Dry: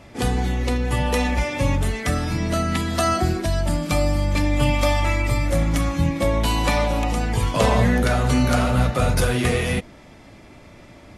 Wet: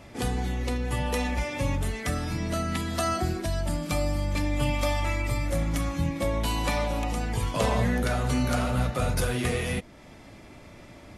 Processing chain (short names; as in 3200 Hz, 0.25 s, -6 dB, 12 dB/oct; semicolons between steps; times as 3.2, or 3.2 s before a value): high shelf 10000 Hz +4.5 dB; in parallel at -1 dB: compressor, threshold -35 dBFS, peak gain reduction 20 dB; on the sum: gain -8 dB